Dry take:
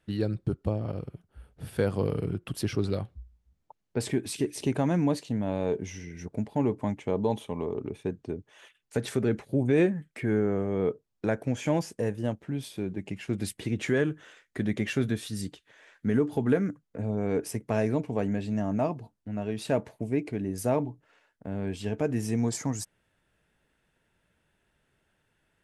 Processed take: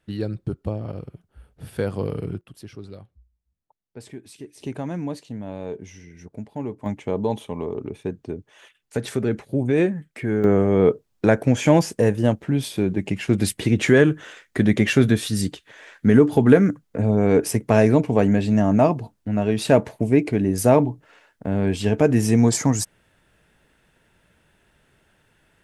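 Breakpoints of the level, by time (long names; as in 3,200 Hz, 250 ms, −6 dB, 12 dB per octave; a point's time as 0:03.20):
+1.5 dB
from 0:02.41 −10.5 dB
from 0:04.61 −3.5 dB
from 0:06.86 +3.5 dB
from 0:10.44 +11 dB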